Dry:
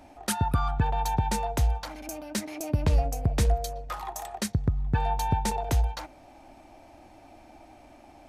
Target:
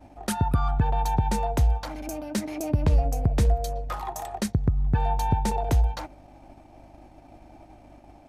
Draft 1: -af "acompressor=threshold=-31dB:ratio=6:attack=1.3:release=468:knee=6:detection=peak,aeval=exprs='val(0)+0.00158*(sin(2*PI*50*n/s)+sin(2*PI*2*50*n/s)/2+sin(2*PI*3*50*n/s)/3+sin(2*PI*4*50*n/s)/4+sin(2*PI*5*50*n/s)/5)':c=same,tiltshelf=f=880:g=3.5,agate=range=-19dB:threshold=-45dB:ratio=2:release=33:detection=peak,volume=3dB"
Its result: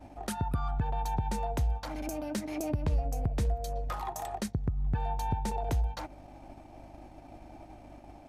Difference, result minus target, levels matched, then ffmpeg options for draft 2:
compressor: peak gain reduction +8.5 dB
-af "acompressor=threshold=-20.5dB:ratio=6:attack=1.3:release=468:knee=6:detection=peak,aeval=exprs='val(0)+0.00158*(sin(2*PI*50*n/s)+sin(2*PI*2*50*n/s)/2+sin(2*PI*3*50*n/s)/3+sin(2*PI*4*50*n/s)/4+sin(2*PI*5*50*n/s)/5)':c=same,tiltshelf=f=880:g=3.5,agate=range=-19dB:threshold=-45dB:ratio=2:release=33:detection=peak,volume=3dB"

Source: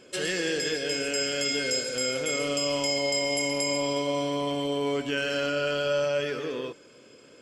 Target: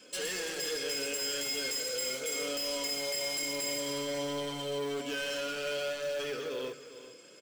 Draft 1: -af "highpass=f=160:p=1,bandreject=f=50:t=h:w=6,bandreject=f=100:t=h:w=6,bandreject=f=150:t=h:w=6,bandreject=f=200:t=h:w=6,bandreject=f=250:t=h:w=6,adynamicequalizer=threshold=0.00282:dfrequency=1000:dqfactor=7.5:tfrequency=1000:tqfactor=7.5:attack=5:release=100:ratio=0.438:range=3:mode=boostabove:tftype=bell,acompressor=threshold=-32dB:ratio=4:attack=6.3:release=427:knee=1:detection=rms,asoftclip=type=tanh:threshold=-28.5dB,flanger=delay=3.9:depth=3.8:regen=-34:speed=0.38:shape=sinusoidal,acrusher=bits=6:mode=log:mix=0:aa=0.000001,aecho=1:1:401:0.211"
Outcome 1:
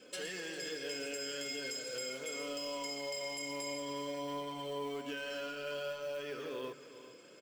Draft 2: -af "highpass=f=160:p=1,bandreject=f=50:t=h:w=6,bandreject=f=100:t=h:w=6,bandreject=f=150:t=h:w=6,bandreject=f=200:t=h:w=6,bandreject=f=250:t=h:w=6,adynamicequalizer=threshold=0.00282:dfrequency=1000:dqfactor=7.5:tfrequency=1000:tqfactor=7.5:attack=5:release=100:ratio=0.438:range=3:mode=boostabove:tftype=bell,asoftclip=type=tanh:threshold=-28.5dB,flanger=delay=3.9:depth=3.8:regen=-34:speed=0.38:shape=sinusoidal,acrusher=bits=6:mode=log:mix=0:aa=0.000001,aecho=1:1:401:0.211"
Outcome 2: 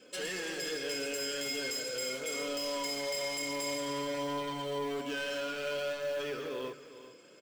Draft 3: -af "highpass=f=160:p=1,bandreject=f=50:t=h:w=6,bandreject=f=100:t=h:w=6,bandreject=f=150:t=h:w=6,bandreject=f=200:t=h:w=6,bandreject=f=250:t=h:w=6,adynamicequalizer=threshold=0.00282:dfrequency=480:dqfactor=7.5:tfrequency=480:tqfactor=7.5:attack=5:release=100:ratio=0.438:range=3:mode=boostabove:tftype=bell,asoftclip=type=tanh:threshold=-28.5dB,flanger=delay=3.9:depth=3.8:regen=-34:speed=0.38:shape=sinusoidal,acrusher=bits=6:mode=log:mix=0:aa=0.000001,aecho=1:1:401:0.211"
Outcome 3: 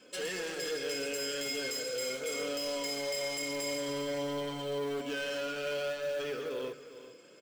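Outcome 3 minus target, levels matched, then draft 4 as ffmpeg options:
8000 Hz band -3.0 dB
-af "highpass=f=160:p=1,highshelf=f=3.4k:g=9,bandreject=f=50:t=h:w=6,bandreject=f=100:t=h:w=6,bandreject=f=150:t=h:w=6,bandreject=f=200:t=h:w=6,bandreject=f=250:t=h:w=6,adynamicequalizer=threshold=0.00282:dfrequency=480:dqfactor=7.5:tfrequency=480:tqfactor=7.5:attack=5:release=100:ratio=0.438:range=3:mode=boostabove:tftype=bell,asoftclip=type=tanh:threshold=-28.5dB,flanger=delay=3.9:depth=3.8:regen=-34:speed=0.38:shape=sinusoidal,acrusher=bits=6:mode=log:mix=0:aa=0.000001,aecho=1:1:401:0.211"

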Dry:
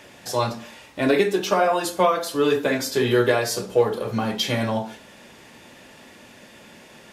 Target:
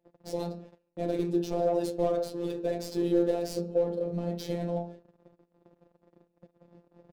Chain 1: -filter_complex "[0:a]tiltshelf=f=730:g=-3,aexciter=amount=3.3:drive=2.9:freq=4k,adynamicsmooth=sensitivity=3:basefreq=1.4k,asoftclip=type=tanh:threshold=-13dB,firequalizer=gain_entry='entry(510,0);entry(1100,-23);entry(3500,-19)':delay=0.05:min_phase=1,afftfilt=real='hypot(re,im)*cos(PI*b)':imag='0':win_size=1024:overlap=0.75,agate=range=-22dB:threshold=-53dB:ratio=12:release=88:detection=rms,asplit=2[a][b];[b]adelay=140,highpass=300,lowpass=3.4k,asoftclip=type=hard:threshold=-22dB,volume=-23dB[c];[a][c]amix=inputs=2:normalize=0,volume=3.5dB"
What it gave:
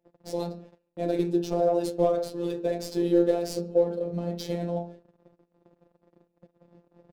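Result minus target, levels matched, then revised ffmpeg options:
soft clip: distortion -8 dB
-filter_complex "[0:a]tiltshelf=f=730:g=-3,aexciter=amount=3.3:drive=2.9:freq=4k,adynamicsmooth=sensitivity=3:basefreq=1.4k,asoftclip=type=tanh:threshold=-20.5dB,firequalizer=gain_entry='entry(510,0);entry(1100,-23);entry(3500,-19)':delay=0.05:min_phase=1,afftfilt=real='hypot(re,im)*cos(PI*b)':imag='0':win_size=1024:overlap=0.75,agate=range=-22dB:threshold=-53dB:ratio=12:release=88:detection=rms,asplit=2[a][b];[b]adelay=140,highpass=300,lowpass=3.4k,asoftclip=type=hard:threshold=-22dB,volume=-23dB[c];[a][c]amix=inputs=2:normalize=0,volume=3.5dB"

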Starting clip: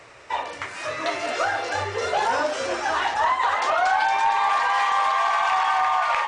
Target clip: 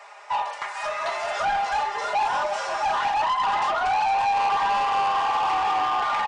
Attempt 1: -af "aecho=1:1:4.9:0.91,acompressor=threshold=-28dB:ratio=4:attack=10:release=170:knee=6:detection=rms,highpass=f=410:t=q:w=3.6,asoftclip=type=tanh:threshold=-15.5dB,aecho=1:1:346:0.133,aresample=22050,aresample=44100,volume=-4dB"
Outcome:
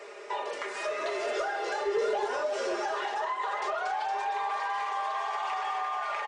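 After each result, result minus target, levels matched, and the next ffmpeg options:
500 Hz band +8.5 dB; compressor: peak gain reduction +8 dB
-af "aecho=1:1:4.9:0.91,acompressor=threshold=-28dB:ratio=4:attack=10:release=170:knee=6:detection=rms,highpass=f=820:t=q:w=3.6,asoftclip=type=tanh:threshold=-15.5dB,aecho=1:1:346:0.133,aresample=22050,aresample=44100,volume=-4dB"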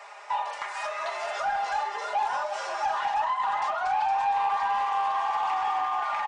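compressor: peak gain reduction +8 dB
-af "aecho=1:1:4.9:0.91,acompressor=threshold=-17.5dB:ratio=4:attack=10:release=170:knee=6:detection=rms,highpass=f=820:t=q:w=3.6,asoftclip=type=tanh:threshold=-15.5dB,aecho=1:1:346:0.133,aresample=22050,aresample=44100,volume=-4dB"

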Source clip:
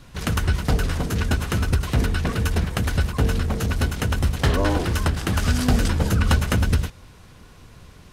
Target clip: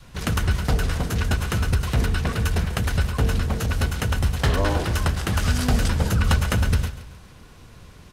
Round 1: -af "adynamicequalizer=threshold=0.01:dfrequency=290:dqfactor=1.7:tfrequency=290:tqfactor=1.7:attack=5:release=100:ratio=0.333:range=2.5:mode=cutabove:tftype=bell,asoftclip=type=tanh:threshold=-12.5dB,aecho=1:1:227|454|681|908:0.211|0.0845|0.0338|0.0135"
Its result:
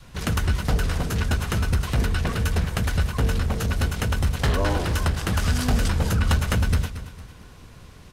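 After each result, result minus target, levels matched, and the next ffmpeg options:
echo 89 ms late; soft clip: distortion +12 dB
-af "adynamicequalizer=threshold=0.01:dfrequency=290:dqfactor=1.7:tfrequency=290:tqfactor=1.7:attack=5:release=100:ratio=0.333:range=2.5:mode=cutabove:tftype=bell,asoftclip=type=tanh:threshold=-12.5dB,aecho=1:1:138|276|414|552:0.211|0.0845|0.0338|0.0135"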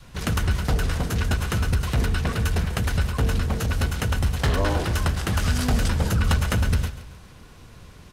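soft clip: distortion +12 dB
-af "adynamicequalizer=threshold=0.01:dfrequency=290:dqfactor=1.7:tfrequency=290:tqfactor=1.7:attack=5:release=100:ratio=0.333:range=2.5:mode=cutabove:tftype=bell,asoftclip=type=tanh:threshold=-5.5dB,aecho=1:1:138|276|414|552:0.211|0.0845|0.0338|0.0135"

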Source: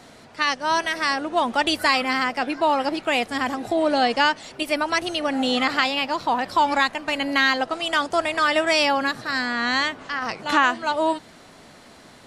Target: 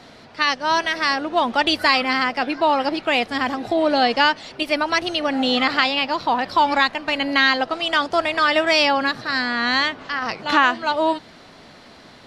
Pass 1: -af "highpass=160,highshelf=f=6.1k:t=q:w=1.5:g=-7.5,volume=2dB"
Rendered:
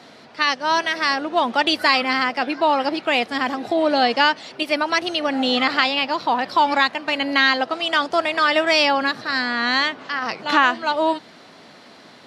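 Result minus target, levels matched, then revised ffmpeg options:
125 Hz band -4.5 dB
-af "highshelf=f=6.1k:t=q:w=1.5:g=-7.5,volume=2dB"

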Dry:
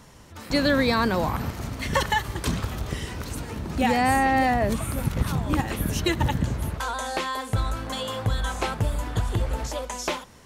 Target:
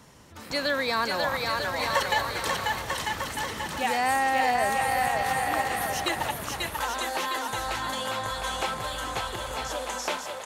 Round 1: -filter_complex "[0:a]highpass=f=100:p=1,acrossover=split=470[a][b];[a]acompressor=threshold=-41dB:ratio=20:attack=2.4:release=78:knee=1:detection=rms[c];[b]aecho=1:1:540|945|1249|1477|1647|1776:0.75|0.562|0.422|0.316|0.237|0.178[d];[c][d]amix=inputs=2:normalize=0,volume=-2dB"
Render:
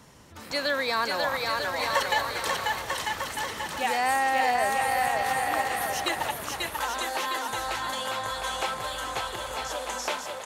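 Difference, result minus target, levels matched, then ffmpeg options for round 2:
compressor: peak gain reduction +5.5 dB
-filter_complex "[0:a]highpass=f=100:p=1,acrossover=split=470[a][b];[a]acompressor=threshold=-35dB:ratio=20:attack=2.4:release=78:knee=1:detection=rms[c];[b]aecho=1:1:540|945|1249|1477|1647|1776:0.75|0.562|0.422|0.316|0.237|0.178[d];[c][d]amix=inputs=2:normalize=0,volume=-2dB"

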